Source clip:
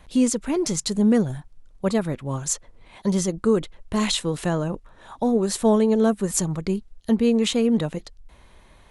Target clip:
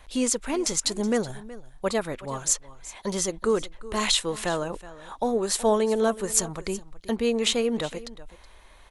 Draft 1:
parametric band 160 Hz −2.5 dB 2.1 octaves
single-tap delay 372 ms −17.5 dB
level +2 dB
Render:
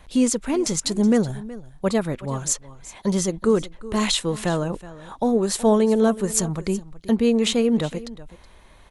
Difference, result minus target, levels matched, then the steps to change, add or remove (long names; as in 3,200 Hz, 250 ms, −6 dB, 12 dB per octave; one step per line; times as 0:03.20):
125 Hz band +6.0 dB
change: parametric band 160 Hz −13.5 dB 2.1 octaves